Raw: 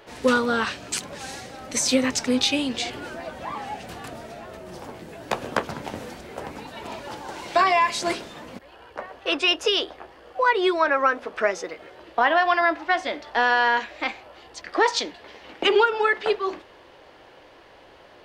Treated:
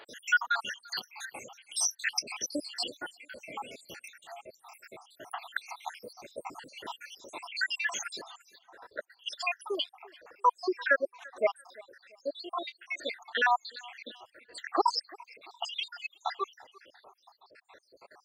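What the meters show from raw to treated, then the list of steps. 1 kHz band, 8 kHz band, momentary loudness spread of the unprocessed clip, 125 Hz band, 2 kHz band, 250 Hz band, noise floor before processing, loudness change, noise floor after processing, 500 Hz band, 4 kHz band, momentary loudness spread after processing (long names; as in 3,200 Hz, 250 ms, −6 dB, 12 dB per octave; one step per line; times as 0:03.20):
−9.5 dB, −5.5 dB, 20 LU, below −20 dB, −8.0 dB, −16.5 dB, −50 dBFS, −10.0 dB, −70 dBFS, −12.5 dB, −9.5 dB, 21 LU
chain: time-frequency cells dropped at random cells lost 82%
high-pass filter 840 Hz 6 dB per octave
on a send: feedback echo with a low-pass in the loop 342 ms, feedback 34%, low-pass 4,200 Hz, level −22 dB
on the sum: reverb reduction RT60 0.63 s
dynamic equaliser 2,100 Hz, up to −3 dB, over −48 dBFS, Q 4.2
level +2.5 dB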